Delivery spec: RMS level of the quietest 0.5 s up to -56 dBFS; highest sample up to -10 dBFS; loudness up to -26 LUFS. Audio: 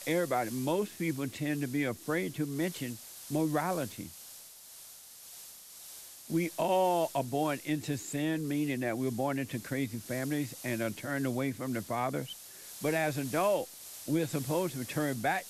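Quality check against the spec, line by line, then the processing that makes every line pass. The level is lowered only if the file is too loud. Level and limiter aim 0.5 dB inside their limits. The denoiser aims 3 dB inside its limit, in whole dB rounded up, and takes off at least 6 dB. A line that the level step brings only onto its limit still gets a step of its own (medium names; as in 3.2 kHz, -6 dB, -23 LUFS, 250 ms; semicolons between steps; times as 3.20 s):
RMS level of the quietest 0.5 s -51 dBFS: fail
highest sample -17.0 dBFS: pass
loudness -33.0 LUFS: pass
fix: noise reduction 8 dB, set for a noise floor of -51 dBFS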